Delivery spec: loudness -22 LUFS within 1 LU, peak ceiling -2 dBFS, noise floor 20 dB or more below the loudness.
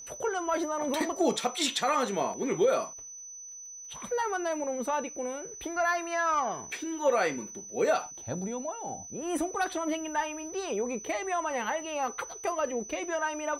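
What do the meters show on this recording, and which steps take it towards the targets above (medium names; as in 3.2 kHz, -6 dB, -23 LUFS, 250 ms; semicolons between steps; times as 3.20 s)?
tick rate 24 per s; steady tone 6 kHz; tone level -42 dBFS; loudness -31.0 LUFS; peak level -15.5 dBFS; loudness target -22.0 LUFS
-> de-click; band-stop 6 kHz, Q 30; trim +9 dB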